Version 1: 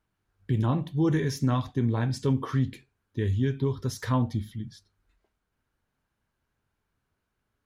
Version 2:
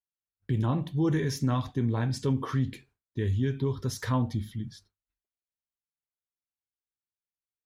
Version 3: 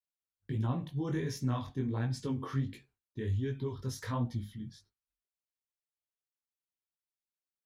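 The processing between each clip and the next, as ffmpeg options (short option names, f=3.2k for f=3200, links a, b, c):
-filter_complex "[0:a]agate=range=-33dB:threshold=-53dB:ratio=3:detection=peak,asplit=2[a][b];[b]alimiter=level_in=2.5dB:limit=-24dB:level=0:latency=1:release=61,volume=-2.5dB,volume=-2dB[c];[a][c]amix=inputs=2:normalize=0,volume=-4dB"
-af "flanger=delay=16:depth=6.8:speed=1.4,volume=-3.5dB"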